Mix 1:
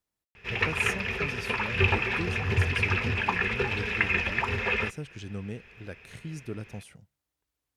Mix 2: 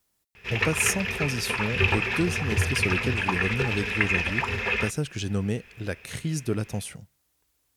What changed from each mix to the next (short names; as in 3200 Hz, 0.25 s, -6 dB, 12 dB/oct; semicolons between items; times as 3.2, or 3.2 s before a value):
speech +9.5 dB; master: add high shelf 4500 Hz +7.5 dB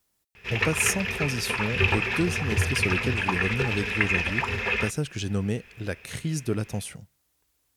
none